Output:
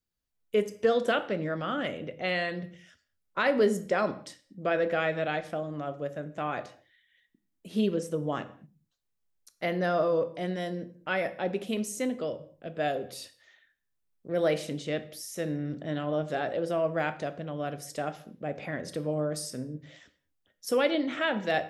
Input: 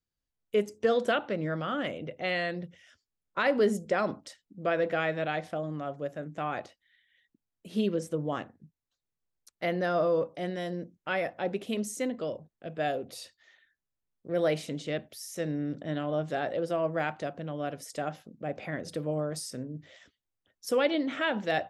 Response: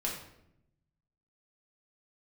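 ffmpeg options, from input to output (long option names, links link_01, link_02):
-filter_complex "[0:a]asplit=2[link_01][link_02];[1:a]atrim=start_sample=2205,afade=type=out:start_time=0.29:duration=0.01,atrim=end_sample=13230,highshelf=frequency=8700:gain=9[link_03];[link_02][link_03]afir=irnorm=-1:irlink=0,volume=-12.5dB[link_04];[link_01][link_04]amix=inputs=2:normalize=0,volume=-1dB"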